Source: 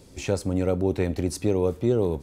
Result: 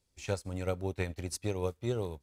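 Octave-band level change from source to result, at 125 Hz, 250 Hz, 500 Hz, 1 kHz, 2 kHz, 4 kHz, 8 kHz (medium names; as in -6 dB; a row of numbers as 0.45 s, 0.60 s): -8.5 dB, -13.5 dB, -11.0 dB, -6.5 dB, -4.0 dB, -5.0 dB, -5.5 dB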